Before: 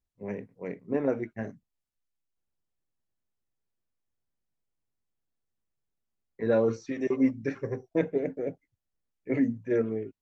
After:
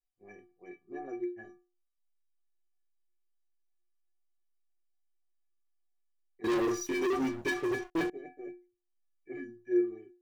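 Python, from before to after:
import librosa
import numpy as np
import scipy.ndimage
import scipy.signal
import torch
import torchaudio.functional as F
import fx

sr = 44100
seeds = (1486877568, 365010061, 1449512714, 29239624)

y = fx.stiff_resonator(x, sr, f0_hz=350.0, decay_s=0.38, stiffness=0.03)
y = fx.leveller(y, sr, passes=5, at=(6.44, 8.1))
y = F.gain(torch.from_numpy(y), 7.5).numpy()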